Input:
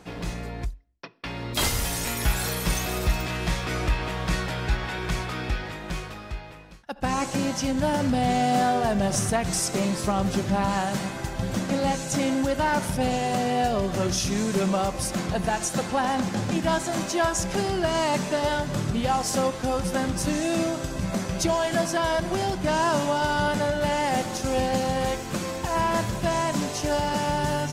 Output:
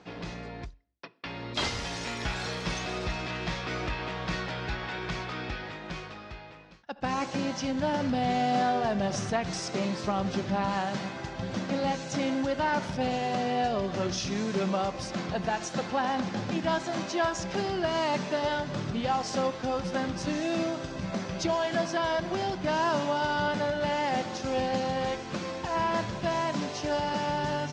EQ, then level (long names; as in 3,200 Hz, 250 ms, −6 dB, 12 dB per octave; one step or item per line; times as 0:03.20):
high-pass filter 140 Hz 6 dB per octave
low-pass filter 5,600 Hz 24 dB per octave
−3.5 dB